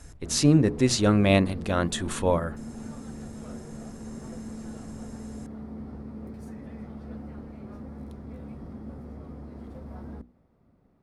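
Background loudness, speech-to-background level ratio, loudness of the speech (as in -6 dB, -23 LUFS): -40.5 LUFS, 17.0 dB, -23.5 LUFS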